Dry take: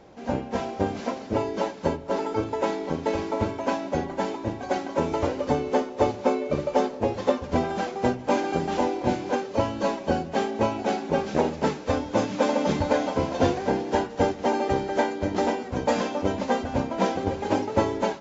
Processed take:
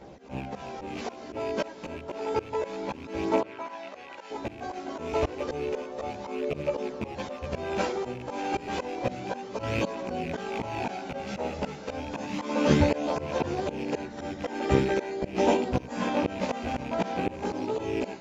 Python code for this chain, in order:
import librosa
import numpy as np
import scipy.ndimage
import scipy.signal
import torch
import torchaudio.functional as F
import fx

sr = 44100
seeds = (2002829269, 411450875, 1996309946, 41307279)

y = fx.rattle_buzz(x, sr, strikes_db=-35.0, level_db=-27.0)
y = fx.auto_swell(y, sr, attack_ms=279.0)
y = fx.chorus_voices(y, sr, voices=2, hz=0.15, base_ms=15, depth_ms=1.6, mix_pct=55)
y = fx.bandpass_q(y, sr, hz=fx.line((3.4, 1200.0), (4.3, 3300.0)), q=0.52, at=(3.4, 4.3), fade=0.02)
y = fx.pre_swell(y, sr, db_per_s=32.0, at=(9.63, 11.09))
y = y * librosa.db_to_amplitude(5.5)